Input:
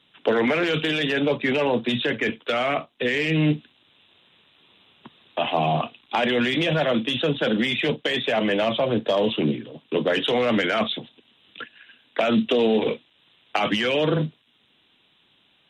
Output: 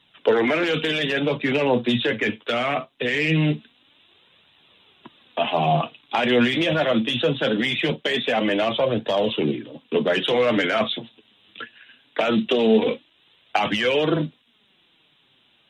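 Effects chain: flange 0.22 Hz, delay 1 ms, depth 8.9 ms, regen +46%; trim +5 dB

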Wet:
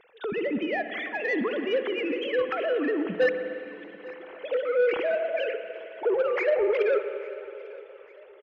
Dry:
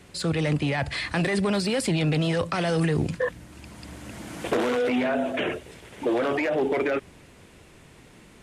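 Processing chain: formants replaced by sine waves; saturation -17.5 dBFS, distortion -13 dB; on a send: feedback delay 847 ms, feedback 47%, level -22 dB; on the sum: spring tank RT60 3.1 s, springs 51/57 ms, chirp 35 ms, DRR 8 dB

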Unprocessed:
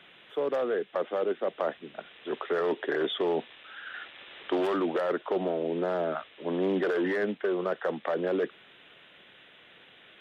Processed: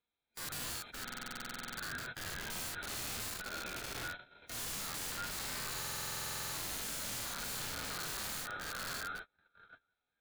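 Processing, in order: split-band scrambler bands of 1 kHz; shuffle delay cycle 745 ms, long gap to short 3:1, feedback 41%, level -10 dB; gate -39 dBFS, range -43 dB; in parallel at -2.5 dB: compression 6:1, threshold -36 dBFS, peak gain reduction 13 dB; on the sum: integer overflow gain 29.5 dB; bass shelf 230 Hz +9 dB; peak limiter -34 dBFS, peak gain reduction 8 dB; harmonic-percussive split percussive -15 dB; buffer glitch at 1.03/5.79 s, samples 2048, times 15; 3.28–3.95 s: transformer saturation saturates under 210 Hz; trim +4 dB

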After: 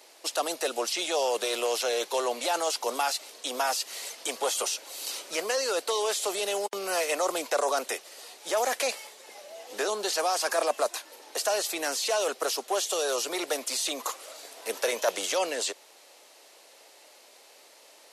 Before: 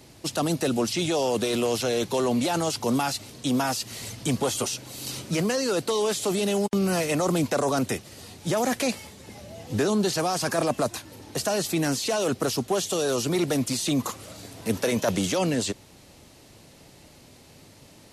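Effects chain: high-pass 470 Hz 24 dB/octave

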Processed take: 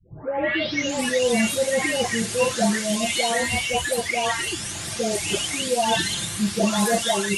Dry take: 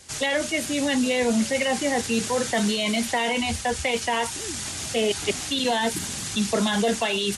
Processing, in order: delay that grows with frequency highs late, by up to 893 ms; trim +4.5 dB

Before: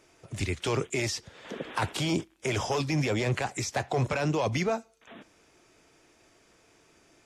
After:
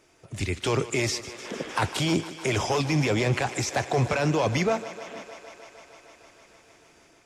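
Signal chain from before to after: level rider gain up to 3.5 dB; on a send: thinning echo 153 ms, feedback 84%, high-pass 220 Hz, level -15 dB

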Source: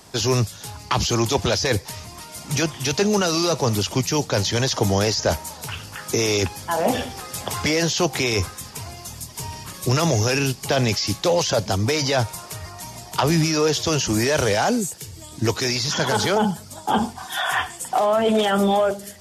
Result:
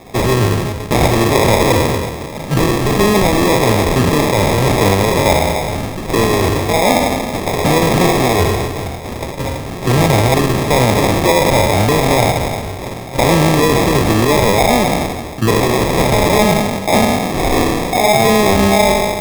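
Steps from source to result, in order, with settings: spectral sustain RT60 1.48 s; in parallel at +2 dB: peak limiter -13 dBFS, peak gain reduction 10 dB; on the sum: sample-and-hold 30×

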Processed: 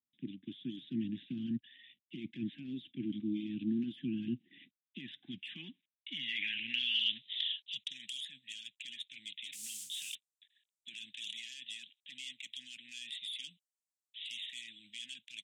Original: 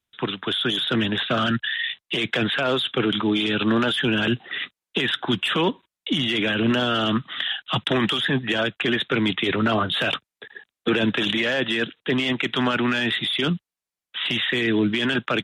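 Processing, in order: 9.52–10.15 s: modulation noise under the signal 14 dB; inverse Chebyshev band-stop 420–1400 Hz, stop band 40 dB; band-pass sweep 350 Hz -> 7.8 kHz, 4.50–8.11 s; trim -2.5 dB

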